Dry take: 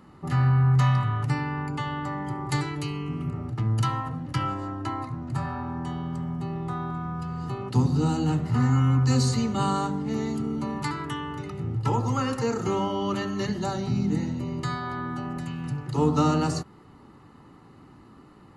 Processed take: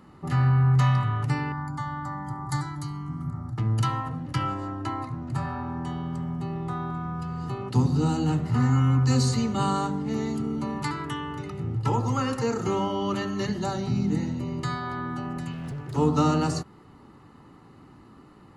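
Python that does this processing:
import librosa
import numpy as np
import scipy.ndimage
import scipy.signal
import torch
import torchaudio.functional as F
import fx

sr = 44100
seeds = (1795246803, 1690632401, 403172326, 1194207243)

y = fx.fixed_phaser(x, sr, hz=1100.0, stages=4, at=(1.52, 3.58))
y = fx.overload_stage(y, sr, gain_db=31.5, at=(15.52, 15.96))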